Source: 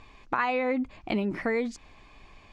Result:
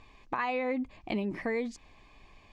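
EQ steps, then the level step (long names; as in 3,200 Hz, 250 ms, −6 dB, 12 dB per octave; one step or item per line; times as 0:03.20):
notch filter 1,400 Hz, Q 5.5
−4.0 dB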